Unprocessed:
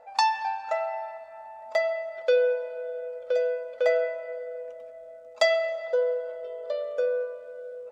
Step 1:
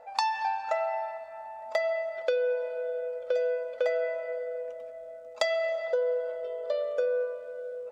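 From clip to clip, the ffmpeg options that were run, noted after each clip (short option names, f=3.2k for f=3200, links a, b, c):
-af "acompressor=threshold=-25dB:ratio=12,volume=1.5dB"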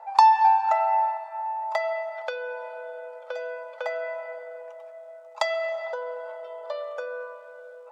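-af "highpass=f=910:t=q:w=4.9"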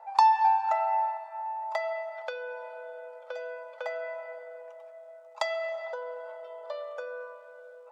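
-af "bandreject=f=429.7:t=h:w=4,bandreject=f=859.4:t=h:w=4,bandreject=f=1.2891k:t=h:w=4,bandreject=f=1.7188k:t=h:w=4,bandreject=f=2.1485k:t=h:w=4,bandreject=f=2.5782k:t=h:w=4,bandreject=f=3.0079k:t=h:w=4,bandreject=f=3.4376k:t=h:w=4,bandreject=f=3.8673k:t=h:w=4,bandreject=f=4.297k:t=h:w=4,bandreject=f=4.7267k:t=h:w=4,bandreject=f=5.1564k:t=h:w=4,bandreject=f=5.5861k:t=h:w=4,bandreject=f=6.0158k:t=h:w=4,bandreject=f=6.4455k:t=h:w=4,bandreject=f=6.8752k:t=h:w=4,bandreject=f=7.3049k:t=h:w=4,bandreject=f=7.7346k:t=h:w=4,bandreject=f=8.1643k:t=h:w=4,bandreject=f=8.594k:t=h:w=4,bandreject=f=9.0237k:t=h:w=4,bandreject=f=9.4534k:t=h:w=4,bandreject=f=9.8831k:t=h:w=4,bandreject=f=10.3128k:t=h:w=4,bandreject=f=10.7425k:t=h:w=4,bandreject=f=11.1722k:t=h:w=4,bandreject=f=11.6019k:t=h:w=4,bandreject=f=12.0316k:t=h:w=4,bandreject=f=12.4613k:t=h:w=4,bandreject=f=12.891k:t=h:w=4,bandreject=f=13.3207k:t=h:w=4,bandreject=f=13.7504k:t=h:w=4,bandreject=f=14.1801k:t=h:w=4,bandreject=f=14.6098k:t=h:w=4,bandreject=f=15.0395k:t=h:w=4,bandreject=f=15.4692k:t=h:w=4,bandreject=f=15.8989k:t=h:w=4,bandreject=f=16.3286k:t=h:w=4,bandreject=f=16.7583k:t=h:w=4,volume=-4.5dB"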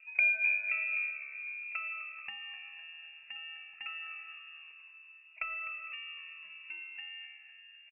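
-filter_complex "[0:a]asplit=5[a][b][c][d][e];[b]adelay=253,afreqshift=70,volume=-14dB[f];[c]adelay=506,afreqshift=140,volume=-20.7dB[g];[d]adelay=759,afreqshift=210,volume=-27.5dB[h];[e]adelay=1012,afreqshift=280,volume=-34.2dB[i];[a][f][g][h][i]amix=inputs=5:normalize=0,lowpass=f=2.8k:t=q:w=0.5098,lowpass=f=2.8k:t=q:w=0.6013,lowpass=f=2.8k:t=q:w=0.9,lowpass=f=2.8k:t=q:w=2.563,afreqshift=-3300,volume=-7.5dB"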